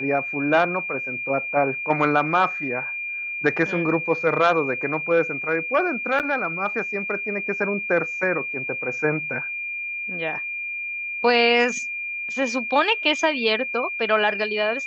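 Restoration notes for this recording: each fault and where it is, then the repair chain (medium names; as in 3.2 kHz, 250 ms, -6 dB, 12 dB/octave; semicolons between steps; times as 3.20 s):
whine 2.4 kHz -27 dBFS
6.19–6.20 s: dropout 8.3 ms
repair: band-stop 2.4 kHz, Q 30; interpolate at 6.19 s, 8.3 ms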